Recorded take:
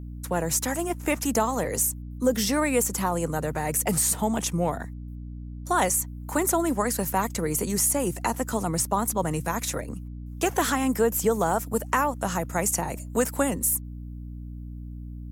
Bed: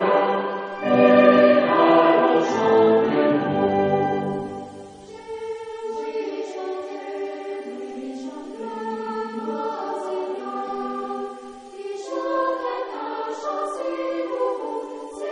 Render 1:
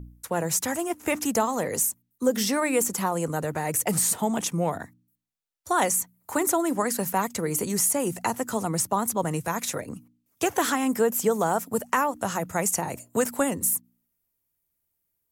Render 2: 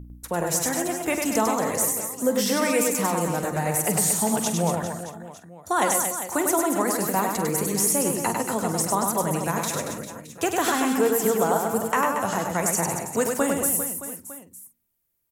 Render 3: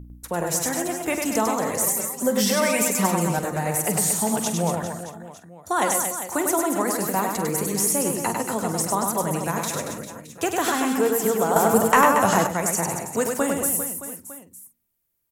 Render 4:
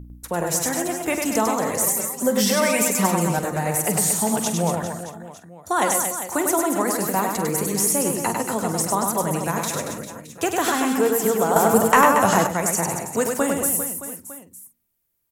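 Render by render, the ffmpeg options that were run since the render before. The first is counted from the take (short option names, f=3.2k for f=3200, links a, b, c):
-af "bandreject=f=60:t=h:w=4,bandreject=f=120:t=h:w=4,bandreject=f=180:t=h:w=4,bandreject=f=240:t=h:w=4,bandreject=f=300:t=h:w=4"
-filter_complex "[0:a]asplit=2[a][b];[b]adelay=46,volume=-13dB[c];[a][c]amix=inputs=2:normalize=0,asplit=2[d][e];[e]aecho=0:1:100|230|399|618.7|904.3:0.631|0.398|0.251|0.158|0.1[f];[d][f]amix=inputs=2:normalize=0"
-filter_complex "[0:a]asettb=1/sr,asplit=3[a][b][c];[a]atrim=end=1.864[d];[b]atrim=start=1.86:end=3.39,asetpts=PTS-STARTPTS,afade=t=in:d=0.004:c=qsin,afade=t=out:st=1.526:d=0.004:c=qsin,aecho=1:1:5.2:0.88,atrim=end_sample=67473[e];[c]atrim=start=3.386[f];[d][e]acrossfade=d=0.004:c1=hsin:c2=qsin[g];[g][f]acrossfade=d=0.004:c1=qsin:c2=hsin,asettb=1/sr,asplit=3[h][i][j];[h]atrim=end=11.564[k];[i]atrim=start=11.56:end=12.47,asetpts=PTS-STARTPTS,afade=t=in:d=0.004:c=qsin,afade=t=out:st=0.906:d=0.004:c=qsin,acontrast=88[l];[j]atrim=start=12.466[m];[k][l]acrossfade=d=0.004:c1=hsin:c2=qsin[n];[n][m]acrossfade=d=0.004:c1=qsin:c2=hsin"
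-af "volume=1.5dB"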